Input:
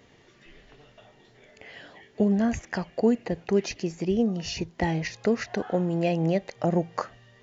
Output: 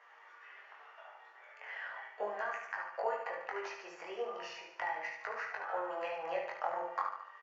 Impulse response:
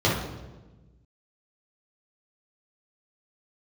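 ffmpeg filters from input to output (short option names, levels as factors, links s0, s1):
-filter_complex "[0:a]highpass=f=1100:w=0.5412,highpass=f=1100:w=1.3066,equalizer=f=3700:t=o:w=0.77:g=-14,acompressor=threshold=0.00562:ratio=6,flanger=delay=18.5:depth=4.9:speed=0.38,adynamicsmooth=sensitivity=1.5:basefreq=1700,aecho=1:1:73|146|219|292|365|438:0.398|0.211|0.112|0.0593|0.0314|0.0166,asplit=2[s0][s1];[1:a]atrim=start_sample=2205,atrim=end_sample=3528[s2];[s1][s2]afir=irnorm=-1:irlink=0,volume=0.15[s3];[s0][s3]amix=inputs=2:normalize=0,volume=5.31"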